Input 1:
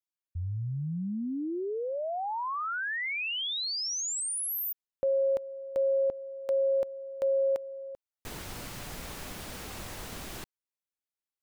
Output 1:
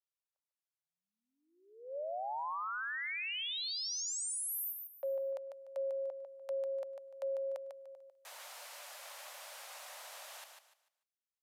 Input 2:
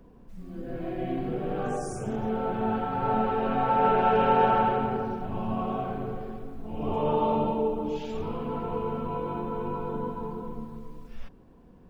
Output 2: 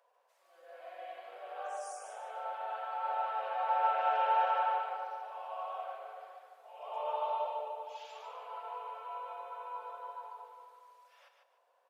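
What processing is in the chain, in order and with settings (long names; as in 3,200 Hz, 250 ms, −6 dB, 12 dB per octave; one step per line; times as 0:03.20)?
Chebyshev high-pass filter 560 Hz, order 5
repeating echo 148 ms, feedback 28%, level −6 dB
downsampling to 32,000 Hz
level −6.5 dB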